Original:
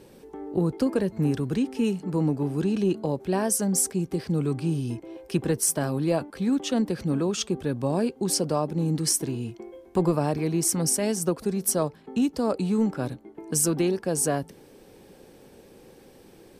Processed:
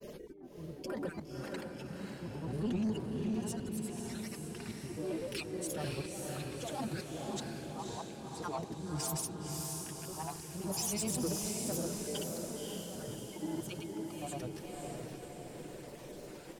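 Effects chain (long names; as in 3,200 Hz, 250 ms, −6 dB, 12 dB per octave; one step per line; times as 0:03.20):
time-frequency cells dropped at random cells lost 22%
brickwall limiter −22.5 dBFS, peak gain reduction 11 dB
downward compressor 16 to 1, threshold −32 dBFS, peak gain reduction 7.5 dB
mains-hum notches 60/120/180/240/300/360/420 Hz
comb filter 5.7 ms, depth 55%
volume swells 594 ms
pitch-shifted copies added −12 semitones −15 dB
granular cloud 100 ms, grains 20 per second, pitch spread up and down by 3 semitones
feedback delay with all-pass diffusion 554 ms, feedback 57%, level −3 dB
soft clipping −31 dBFS, distortion −18 dB
level +3.5 dB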